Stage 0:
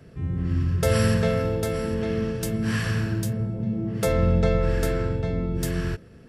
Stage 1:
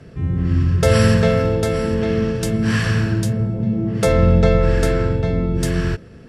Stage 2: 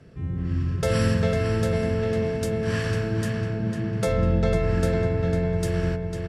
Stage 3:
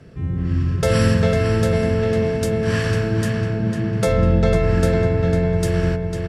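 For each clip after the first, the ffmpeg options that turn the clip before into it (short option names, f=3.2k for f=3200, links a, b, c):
-af "lowpass=8.8k,volume=7dB"
-filter_complex "[0:a]asplit=2[a][b];[b]adelay=500,lowpass=f=4.2k:p=1,volume=-4.5dB,asplit=2[c][d];[d]adelay=500,lowpass=f=4.2k:p=1,volume=0.52,asplit=2[e][f];[f]adelay=500,lowpass=f=4.2k:p=1,volume=0.52,asplit=2[g][h];[h]adelay=500,lowpass=f=4.2k:p=1,volume=0.52,asplit=2[i][j];[j]adelay=500,lowpass=f=4.2k:p=1,volume=0.52,asplit=2[k][l];[l]adelay=500,lowpass=f=4.2k:p=1,volume=0.52,asplit=2[m][n];[n]adelay=500,lowpass=f=4.2k:p=1,volume=0.52[o];[a][c][e][g][i][k][m][o]amix=inputs=8:normalize=0,volume=-8.5dB"
-af "asoftclip=type=hard:threshold=-11.5dB,volume=5.5dB"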